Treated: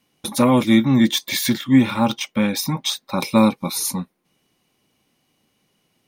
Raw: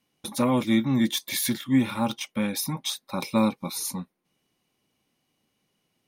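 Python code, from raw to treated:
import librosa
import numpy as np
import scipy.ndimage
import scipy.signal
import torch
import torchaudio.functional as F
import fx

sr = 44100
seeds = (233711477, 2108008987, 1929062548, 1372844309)

y = fx.peak_eq(x, sr, hz=11000.0, db=-12.0, octaves=0.43, at=(0.86, 3.18))
y = y * librosa.db_to_amplitude(7.5)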